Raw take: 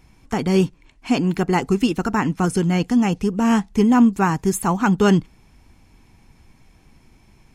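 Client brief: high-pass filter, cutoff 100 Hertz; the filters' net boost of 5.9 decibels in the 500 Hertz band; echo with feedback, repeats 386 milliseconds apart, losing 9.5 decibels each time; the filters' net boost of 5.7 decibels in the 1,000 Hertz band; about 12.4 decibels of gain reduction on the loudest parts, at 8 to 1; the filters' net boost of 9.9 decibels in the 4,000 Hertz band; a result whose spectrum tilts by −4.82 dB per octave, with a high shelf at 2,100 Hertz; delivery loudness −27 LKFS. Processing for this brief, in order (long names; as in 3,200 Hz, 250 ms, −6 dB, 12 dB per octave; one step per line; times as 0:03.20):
high-pass filter 100 Hz
parametric band 500 Hz +7.5 dB
parametric band 1,000 Hz +3 dB
high-shelf EQ 2,100 Hz +5.5 dB
parametric band 4,000 Hz +8.5 dB
downward compressor 8 to 1, threshold −21 dBFS
repeating echo 386 ms, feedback 33%, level −9.5 dB
level −1.5 dB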